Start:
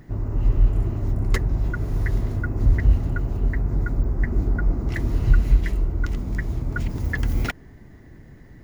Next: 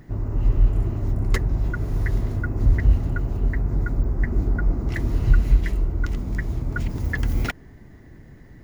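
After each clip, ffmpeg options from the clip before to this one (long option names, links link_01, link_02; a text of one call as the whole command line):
ffmpeg -i in.wav -af anull out.wav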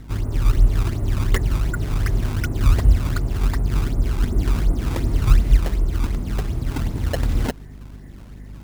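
ffmpeg -i in.wav -af "acrusher=samples=21:mix=1:aa=0.000001:lfo=1:lforange=33.6:lforate=2.7,aeval=exprs='val(0)+0.01*(sin(2*PI*50*n/s)+sin(2*PI*2*50*n/s)/2+sin(2*PI*3*50*n/s)/3+sin(2*PI*4*50*n/s)/4+sin(2*PI*5*50*n/s)/5)':channel_layout=same,volume=2dB" out.wav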